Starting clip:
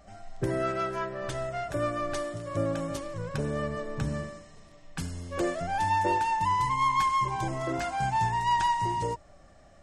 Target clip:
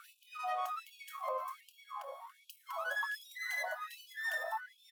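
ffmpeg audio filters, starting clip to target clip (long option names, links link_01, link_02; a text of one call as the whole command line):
ffmpeg -i in.wav -filter_complex "[0:a]firequalizer=gain_entry='entry(160,0);entry(1100,-23);entry(7700,-16)':delay=0.05:min_phase=1,acontrast=87,asplit=2[link_01][link_02];[link_02]adelay=47,volume=-9dB[link_03];[link_01][link_03]amix=inputs=2:normalize=0,asetrate=88200,aresample=44100,bandreject=frequency=49.71:width_type=h:width=4,bandreject=frequency=99.42:width_type=h:width=4,bandreject=frequency=149.13:width_type=h:width=4,bandreject=frequency=198.84:width_type=h:width=4,bandreject=frequency=248.55:width_type=h:width=4,bandreject=frequency=298.26:width_type=h:width=4,bandreject=frequency=347.97:width_type=h:width=4,bandreject=frequency=397.68:width_type=h:width=4,bandreject=frequency=447.39:width_type=h:width=4,bandreject=frequency=497.1:width_type=h:width=4,bandreject=frequency=546.81:width_type=h:width=4,bandreject=frequency=596.52:width_type=h:width=4,bandreject=frequency=646.23:width_type=h:width=4,bandreject=frequency=695.94:width_type=h:width=4,bandreject=frequency=745.65:width_type=h:width=4,bandreject=frequency=795.36:width_type=h:width=4,bandreject=frequency=845.07:width_type=h:width=4,bandreject=frequency=894.78:width_type=h:width=4,bandreject=frequency=944.49:width_type=h:width=4,bandreject=frequency=994.2:width_type=h:width=4,bandreject=frequency=1043.91:width_type=h:width=4,bandreject=frequency=1093.62:width_type=h:width=4,bandreject=frequency=1143.33:width_type=h:width=4,asplit=2[link_04][link_05];[link_05]adelay=606,lowpass=frequency=1500:poles=1,volume=-10dB,asplit=2[link_06][link_07];[link_07]adelay=606,lowpass=frequency=1500:poles=1,volume=0.4,asplit=2[link_08][link_09];[link_09]adelay=606,lowpass=frequency=1500:poles=1,volume=0.4,asplit=2[link_10][link_11];[link_11]adelay=606,lowpass=frequency=1500:poles=1,volume=0.4[link_12];[link_06][link_08][link_10][link_12]amix=inputs=4:normalize=0[link_13];[link_04][link_13]amix=inputs=2:normalize=0,acompressor=threshold=-43dB:ratio=12,asetrate=41625,aresample=44100,atempo=1.05946,afftfilt=real='re*gte(b*sr/1024,500*pow(2400/500,0.5+0.5*sin(2*PI*1.3*pts/sr)))':imag='im*gte(b*sr/1024,500*pow(2400/500,0.5+0.5*sin(2*PI*1.3*pts/sr)))':win_size=1024:overlap=0.75,volume=15dB" out.wav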